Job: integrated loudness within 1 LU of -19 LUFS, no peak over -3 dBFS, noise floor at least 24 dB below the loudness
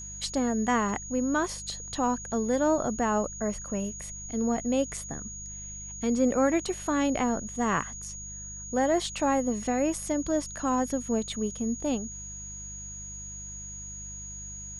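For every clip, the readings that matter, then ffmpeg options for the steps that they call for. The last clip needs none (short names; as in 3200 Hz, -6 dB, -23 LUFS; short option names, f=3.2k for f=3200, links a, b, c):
hum 50 Hz; harmonics up to 200 Hz; hum level -43 dBFS; steady tone 6700 Hz; tone level -39 dBFS; loudness -29.5 LUFS; peak -13.0 dBFS; loudness target -19.0 LUFS
-> -af "bandreject=f=50:t=h:w=4,bandreject=f=100:t=h:w=4,bandreject=f=150:t=h:w=4,bandreject=f=200:t=h:w=4"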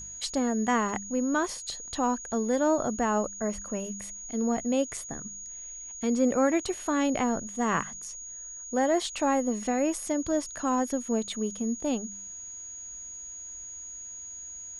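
hum none; steady tone 6700 Hz; tone level -39 dBFS
-> -af "bandreject=f=6.7k:w=30"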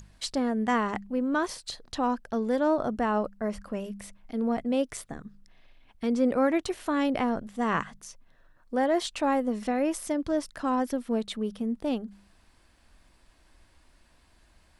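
steady tone none; loudness -29.0 LUFS; peak -14.0 dBFS; loudness target -19.0 LUFS
-> -af "volume=10dB"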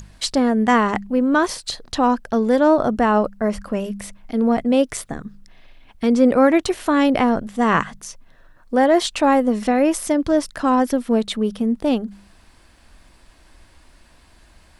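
loudness -19.0 LUFS; peak -4.0 dBFS; noise floor -52 dBFS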